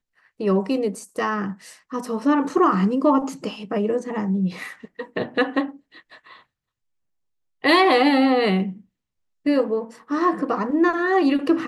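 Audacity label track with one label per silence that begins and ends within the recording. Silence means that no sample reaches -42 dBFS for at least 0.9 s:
6.410000	7.640000	silence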